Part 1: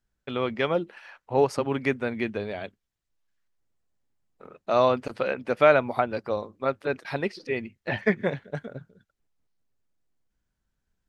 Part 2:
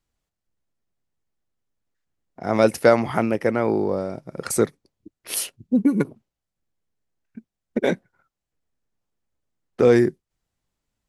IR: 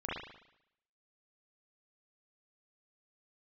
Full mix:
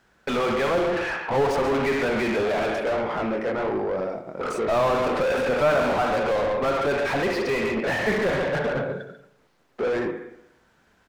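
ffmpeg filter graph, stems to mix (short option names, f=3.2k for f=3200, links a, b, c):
-filter_complex "[0:a]volume=-1dB,asplit=3[a][b][c];[b]volume=-11dB[d];[c]volume=-11dB[e];[1:a]lowpass=6.9k,flanger=delay=18:depth=6.7:speed=1.3,volume=-19.5dB,asplit=2[f][g];[g]volume=-11.5dB[h];[2:a]atrim=start_sample=2205[i];[d][h]amix=inputs=2:normalize=0[j];[j][i]afir=irnorm=-1:irlink=0[k];[e]aecho=0:1:141:1[l];[a][f][k][l]amix=inputs=4:normalize=0,asplit=2[m][n];[n]highpass=f=720:p=1,volume=36dB,asoftclip=type=tanh:threshold=-16dB[o];[m][o]amix=inputs=2:normalize=0,lowpass=f=1.3k:p=1,volume=-6dB"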